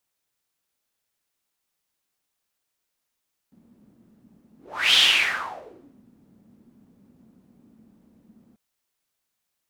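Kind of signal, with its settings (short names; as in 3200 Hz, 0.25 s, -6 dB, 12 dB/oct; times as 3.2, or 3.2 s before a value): whoosh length 5.04 s, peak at 1.43, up 0.41 s, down 1.12 s, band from 220 Hz, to 3300 Hz, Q 5.2, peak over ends 39.5 dB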